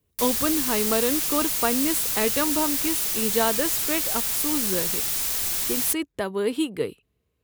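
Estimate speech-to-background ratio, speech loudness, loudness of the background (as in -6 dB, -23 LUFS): -4.0 dB, -27.0 LUFS, -23.0 LUFS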